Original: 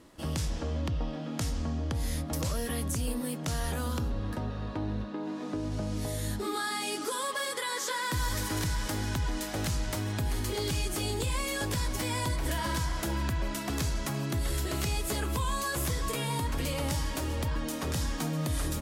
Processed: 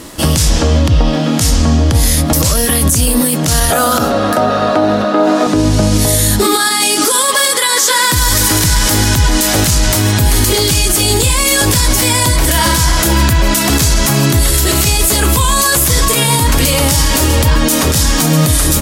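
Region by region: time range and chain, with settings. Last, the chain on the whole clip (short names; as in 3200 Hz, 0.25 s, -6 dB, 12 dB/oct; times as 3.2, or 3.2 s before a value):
3.7–5.47 HPF 200 Hz + small resonant body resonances 670/1300 Hz, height 15 dB, ringing for 25 ms
whole clip: high shelf 4000 Hz +10 dB; maximiser +24 dB; gain -1 dB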